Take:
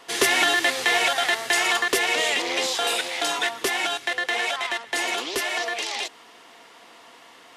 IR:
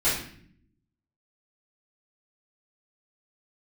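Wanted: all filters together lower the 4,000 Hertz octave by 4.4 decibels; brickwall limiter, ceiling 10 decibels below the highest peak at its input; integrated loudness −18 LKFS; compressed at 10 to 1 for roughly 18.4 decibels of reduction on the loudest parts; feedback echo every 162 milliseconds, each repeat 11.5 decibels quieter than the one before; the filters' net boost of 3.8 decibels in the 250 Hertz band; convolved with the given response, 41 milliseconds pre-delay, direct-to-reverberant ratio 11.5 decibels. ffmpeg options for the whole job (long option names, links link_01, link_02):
-filter_complex "[0:a]equalizer=frequency=250:width_type=o:gain=6,equalizer=frequency=4000:width_type=o:gain=-6,acompressor=threshold=-36dB:ratio=10,alimiter=level_in=9dB:limit=-24dB:level=0:latency=1,volume=-9dB,aecho=1:1:162|324|486:0.266|0.0718|0.0194,asplit=2[link_01][link_02];[1:a]atrim=start_sample=2205,adelay=41[link_03];[link_02][link_03]afir=irnorm=-1:irlink=0,volume=-24.5dB[link_04];[link_01][link_04]amix=inputs=2:normalize=0,volume=23.5dB"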